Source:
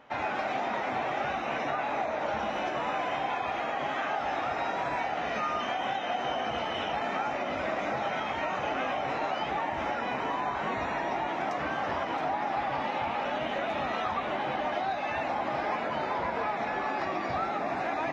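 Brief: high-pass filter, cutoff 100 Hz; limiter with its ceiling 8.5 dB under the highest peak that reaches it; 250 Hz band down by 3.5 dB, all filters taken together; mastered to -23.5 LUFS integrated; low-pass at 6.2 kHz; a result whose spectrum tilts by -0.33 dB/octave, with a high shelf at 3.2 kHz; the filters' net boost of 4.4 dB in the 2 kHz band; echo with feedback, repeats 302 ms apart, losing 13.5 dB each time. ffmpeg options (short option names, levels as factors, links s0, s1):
-af "highpass=100,lowpass=6200,equalizer=f=250:t=o:g=-4.5,equalizer=f=2000:t=o:g=3,highshelf=f=3200:g=8,alimiter=level_in=1.19:limit=0.0631:level=0:latency=1,volume=0.841,aecho=1:1:302|604:0.211|0.0444,volume=3.16"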